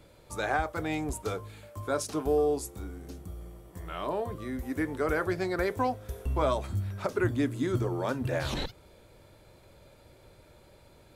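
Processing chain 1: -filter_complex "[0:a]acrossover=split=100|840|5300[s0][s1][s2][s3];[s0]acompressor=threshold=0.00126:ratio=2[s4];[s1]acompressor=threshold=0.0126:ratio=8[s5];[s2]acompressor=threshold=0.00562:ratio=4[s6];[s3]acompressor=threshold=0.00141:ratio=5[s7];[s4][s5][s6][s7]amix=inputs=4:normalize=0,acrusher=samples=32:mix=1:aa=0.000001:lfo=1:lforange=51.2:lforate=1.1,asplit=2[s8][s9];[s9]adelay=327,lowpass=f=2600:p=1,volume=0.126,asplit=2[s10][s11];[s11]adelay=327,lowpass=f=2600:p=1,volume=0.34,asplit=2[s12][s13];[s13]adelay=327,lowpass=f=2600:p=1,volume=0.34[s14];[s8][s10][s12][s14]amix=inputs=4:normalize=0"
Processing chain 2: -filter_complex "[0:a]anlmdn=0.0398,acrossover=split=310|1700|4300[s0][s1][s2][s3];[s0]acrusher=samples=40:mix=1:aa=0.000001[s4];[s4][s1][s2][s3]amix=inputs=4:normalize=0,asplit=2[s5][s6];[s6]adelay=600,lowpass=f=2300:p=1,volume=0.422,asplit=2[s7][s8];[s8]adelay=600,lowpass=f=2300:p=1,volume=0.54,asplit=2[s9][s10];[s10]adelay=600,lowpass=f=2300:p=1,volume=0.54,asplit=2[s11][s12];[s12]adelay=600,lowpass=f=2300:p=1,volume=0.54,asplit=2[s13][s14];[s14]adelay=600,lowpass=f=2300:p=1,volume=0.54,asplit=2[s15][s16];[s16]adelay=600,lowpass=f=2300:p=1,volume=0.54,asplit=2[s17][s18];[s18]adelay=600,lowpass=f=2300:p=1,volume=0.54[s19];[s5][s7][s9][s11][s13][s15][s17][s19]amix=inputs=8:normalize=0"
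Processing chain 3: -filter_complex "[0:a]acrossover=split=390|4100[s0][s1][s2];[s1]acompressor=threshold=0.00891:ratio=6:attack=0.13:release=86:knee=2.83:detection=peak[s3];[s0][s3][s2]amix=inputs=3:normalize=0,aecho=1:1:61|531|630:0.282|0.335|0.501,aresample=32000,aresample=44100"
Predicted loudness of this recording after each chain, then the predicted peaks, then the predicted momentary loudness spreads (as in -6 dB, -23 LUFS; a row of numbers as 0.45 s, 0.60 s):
-41.0 LUFS, -32.0 LUFS, -34.0 LUFS; -24.5 dBFS, -15.5 dBFS, -18.0 dBFS; 18 LU, 14 LU, 11 LU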